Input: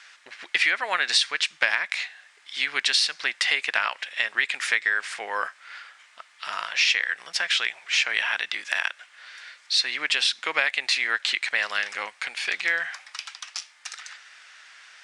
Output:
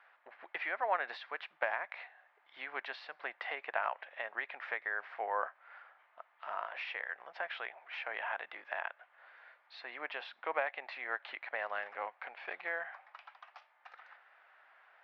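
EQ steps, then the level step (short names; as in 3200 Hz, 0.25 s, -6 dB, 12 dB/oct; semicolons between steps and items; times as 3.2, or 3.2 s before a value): band-pass 710 Hz, Q 2; air absorption 370 m; +1.5 dB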